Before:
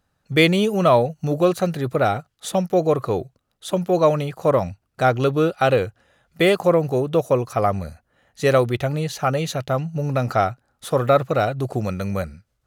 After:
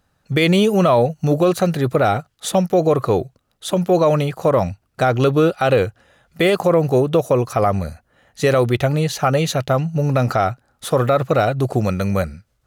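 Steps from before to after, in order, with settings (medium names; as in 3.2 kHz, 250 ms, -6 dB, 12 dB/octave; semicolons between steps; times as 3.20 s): peak limiter -12 dBFS, peak gain reduction 9.5 dB; trim +5.5 dB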